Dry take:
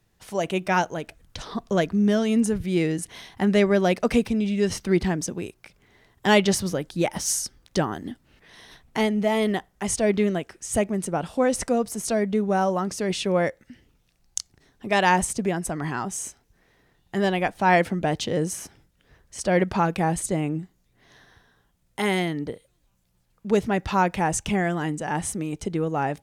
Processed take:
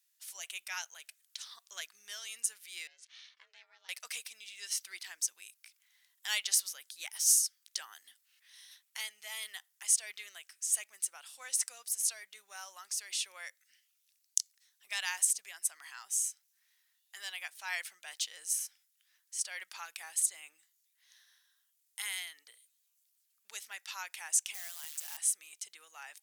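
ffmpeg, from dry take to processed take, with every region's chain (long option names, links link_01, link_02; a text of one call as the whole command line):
ffmpeg -i in.wav -filter_complex "[0:a]asettb=1/sr,asplit=3[link_01][link_02][link_03];[link_01]atrim=end=2.874[link_04];[link_02]atrim=start=2.87:end=3.89,asetpts=PTS-STARTPTS,afade=type=in:duration=0.004:curve=qsin,afade=type=out:start_time=1.016:duration=0.004:curve=qsin,lowpass=frequency=5200:width=0.5412,lowpass=frequency=5200:width=1.3066,acompressor=threshold=-33dB:ratio=4:attack=3.2:release=140:knee=1:detection=peak,aeval=exprs='val(0)*sin(2*PI*240*n/s)':channel_layout=same[link_05];[link_03]atrim=start=3.886[link_06];[link_04][link_05]acrossfade=duration=0.004:curve1=hsin:curve2=qsin[link_07];[link_07][link_06]acrossfade=duration=0.004:curve1=qsin:curve2=hsin,asettb=1/sr,asplit=3[link_08][link_09][link_10];[link_08]atrim=end=24.544[link_11];[link_09]atrim=start=24.54:end=25.17,asetpts=PTS-STARTPTS,afade=type=in:duration=0.004:curve=qsin,afade=type=out:start_time=0.626:duration=0.004:curve=qsin,equalizer=frequency=1700:width=1.1:gain=-8.5,acrusher=bits=7:dc=4:mix=0:aa=0.000001[link_12];[link_10]atrim=start=25.166[link_13];[link_11][link_12]acrossfade=duration=0.004:curve1=hsin:curve2=qsin[link_14];[link_14][link_13]acrossfade=duration=0.004:curve1=qsin:curve2=hsin,highpass=1400,aderivative" out.wav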